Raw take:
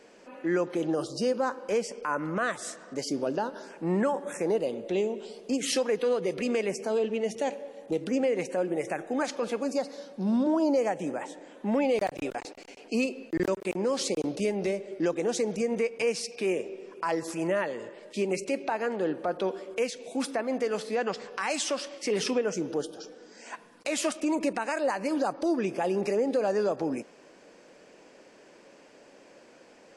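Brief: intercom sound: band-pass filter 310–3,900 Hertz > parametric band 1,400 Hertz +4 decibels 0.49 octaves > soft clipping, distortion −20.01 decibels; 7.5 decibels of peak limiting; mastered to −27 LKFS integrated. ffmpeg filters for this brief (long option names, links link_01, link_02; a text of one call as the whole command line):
ffmpeg -i in.wav -af "alimiter=limit=-24dB:level=0:latency=1,highpass=310,lowpass=3900,equalizer=frequency=1400:width_type=o:width=0.49:gain=4,asoftclip=threshold=-26.5dB,volume=9.5dB" out.wav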